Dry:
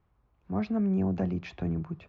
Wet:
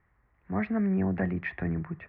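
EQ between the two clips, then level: synth low-pass 1900 Hz, resonance Q 7.9; 0.0 dB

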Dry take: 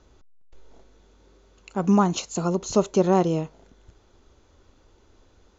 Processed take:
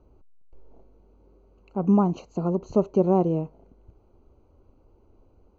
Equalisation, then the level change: running mean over 25 samples; 0.0 dB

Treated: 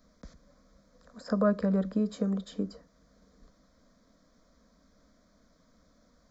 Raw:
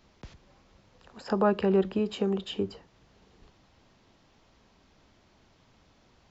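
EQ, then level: bell 1600 Hz -5 dB 1.6 oct; fixed phaser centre 560 Hz, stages 8; +2.0 dB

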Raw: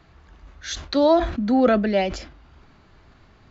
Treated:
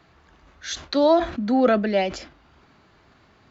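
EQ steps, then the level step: HPF 170 Hz 6 dB/oct; 0.0 dB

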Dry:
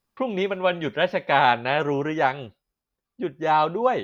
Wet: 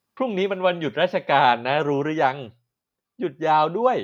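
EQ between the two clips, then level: HPF 88 Hz; notches 60/120 Hz; dynamic EQ 1900 Hz, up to -4 dB, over -34 dBFS, Q 1.6; +2.0 dB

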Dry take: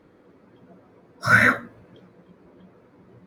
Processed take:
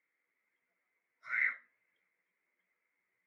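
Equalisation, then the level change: band-pass 2100 Hz, Q 14; -4.5 dB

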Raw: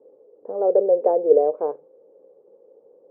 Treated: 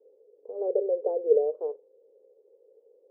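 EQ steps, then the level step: ladder band-pass 480 Hz, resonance 60%; -2.5 dB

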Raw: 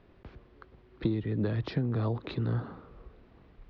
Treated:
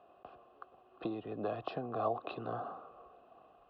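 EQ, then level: vowel filter a; Butterworth band-stop 2300 Hz, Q 5.1; tone controls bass -2 dB, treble -3 dB; +13.0 dB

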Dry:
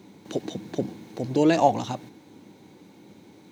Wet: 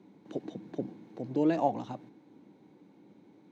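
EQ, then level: HPF 120 Hz 24 dB/oct; LPF 1400 Hz 6 dB/oct; bell 290 Hz +3 dB 0.29 oct; -8.0 dB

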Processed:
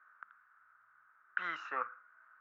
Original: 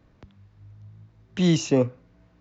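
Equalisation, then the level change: Butterworth band-pass 1400 Hz, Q 4.1; +15.0 dB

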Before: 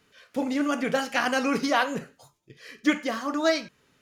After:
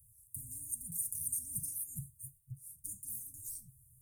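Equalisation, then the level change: Chebyshev band-stop 130–8700 Hz, order 5; high shelf 4700 Hz +7 dB; +9.5 dB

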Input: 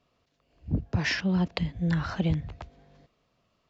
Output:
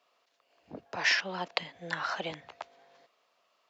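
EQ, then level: Chebyshev high-pass 720 Hz, order 2; +3.5 dB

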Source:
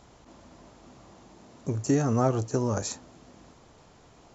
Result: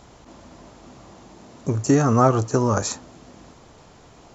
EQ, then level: dynamic EQ 1200 Hz, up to +7 dB, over -50 dBFS, Q 2.1; +6.5 dB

